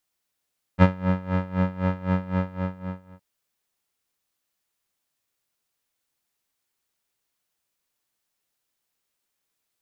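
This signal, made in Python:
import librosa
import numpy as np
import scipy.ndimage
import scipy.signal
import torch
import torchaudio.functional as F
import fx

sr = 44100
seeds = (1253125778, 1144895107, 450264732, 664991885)

y = fx.sub_patch_tremolo(sr, seeds[0], note=54, wave='square', wave2='saw', interval_st=0, detune_cents=16, level2_db=-9.0, sub_db=-2.5, noise_db=-30.0, kind='lowpass', cutoff_hz=1400.0, q=1.0, env_oct=0.5, env_decay_s=0.27, env_sustain_pct=40, attack_ms=40.0, decay_s=0.05, sustain_db=-11.0, release_s=0.92, note_s=1.5, lfo_hz=3.9, tremolo_db=18.5)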